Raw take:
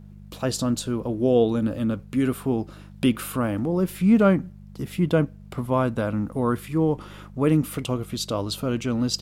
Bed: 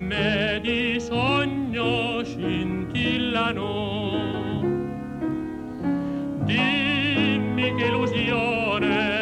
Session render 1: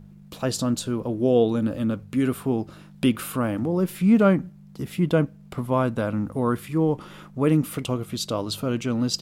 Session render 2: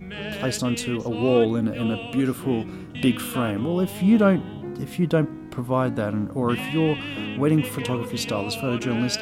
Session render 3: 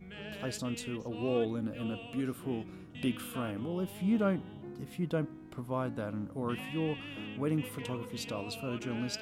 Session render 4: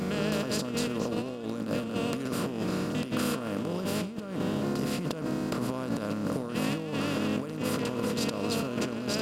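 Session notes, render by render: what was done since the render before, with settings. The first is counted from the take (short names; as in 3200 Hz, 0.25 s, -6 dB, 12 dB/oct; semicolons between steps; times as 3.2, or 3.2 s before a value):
de-hum 50 Hz, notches 2
add bed -9.5 dB
gain -12 dB
per-bin compression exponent 0.4; negative-ratio compressor -30 dBFS, ratio -0.5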